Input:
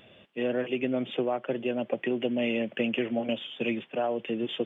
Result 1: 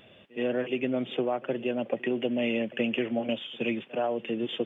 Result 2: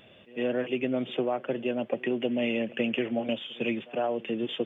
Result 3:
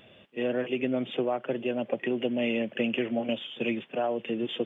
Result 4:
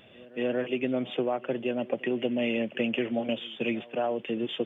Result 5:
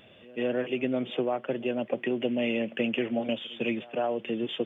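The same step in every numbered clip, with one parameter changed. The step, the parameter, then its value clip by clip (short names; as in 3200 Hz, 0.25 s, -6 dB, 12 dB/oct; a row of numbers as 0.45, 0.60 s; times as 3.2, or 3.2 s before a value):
pre-echo, time: 69, 103, 39, 233, 157 ms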